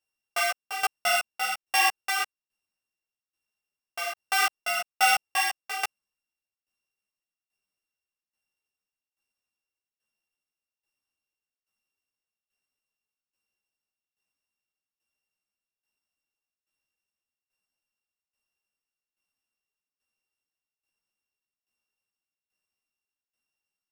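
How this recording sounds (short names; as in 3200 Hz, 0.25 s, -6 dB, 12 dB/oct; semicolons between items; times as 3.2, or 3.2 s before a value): a buzz of ramps at a fixed pitch in blocks of 16 samples; tremolo saw down 1.2 Hz, depth 85%; a shimmering, thickened sound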